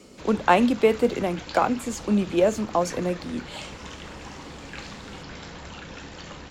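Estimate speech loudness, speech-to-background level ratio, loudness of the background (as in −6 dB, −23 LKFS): −23.5 LKFS, 16.0 dB, −39.5 LKFS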